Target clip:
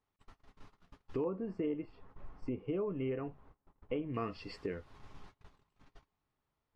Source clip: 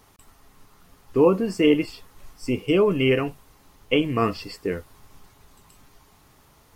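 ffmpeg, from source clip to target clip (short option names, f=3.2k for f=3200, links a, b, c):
-af "asetnsamples=n=441:p=0,asendcmd='1.24 lowpass f 1300;4.14 lowpass f 3700',lowpass=4k,agate=range=-27dB:threshold=-50dB:ratio=16:detection=peak,acompressor=threshold=-37dB:ratio=3,volume=-2dB"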